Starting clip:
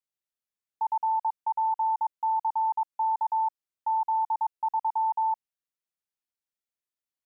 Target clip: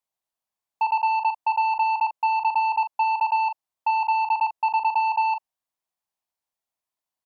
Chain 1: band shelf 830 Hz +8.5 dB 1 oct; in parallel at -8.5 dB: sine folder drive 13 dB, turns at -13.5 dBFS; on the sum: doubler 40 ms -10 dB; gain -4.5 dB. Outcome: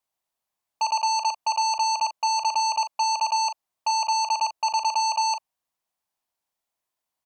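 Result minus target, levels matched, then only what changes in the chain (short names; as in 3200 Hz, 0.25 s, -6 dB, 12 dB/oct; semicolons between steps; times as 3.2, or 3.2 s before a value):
sine folder: distortion +23 dB
change: sine folder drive 6 dB, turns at -13.5 dBFS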